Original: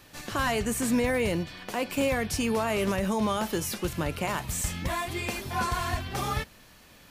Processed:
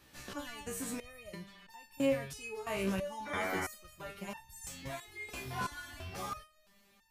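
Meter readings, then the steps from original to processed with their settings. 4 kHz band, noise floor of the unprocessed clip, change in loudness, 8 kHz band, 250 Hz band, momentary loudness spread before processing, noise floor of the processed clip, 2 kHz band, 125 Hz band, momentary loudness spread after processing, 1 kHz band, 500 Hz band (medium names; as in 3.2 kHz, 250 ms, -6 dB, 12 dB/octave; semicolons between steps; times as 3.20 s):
-11.5 dB, -54 dBFS, -10.5 dB, -11.5 dB, -11.0 dB, 6 LU, -67 dBFS, -9.0 dB, -13.0 dB, 14 LU, -11.0 dB, -9.5 dB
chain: painted sound noise, 3.25–3.66 s, 220–2400 Hz -28 dBFS; resonator arpeggio 3 Hz 64–900 Hz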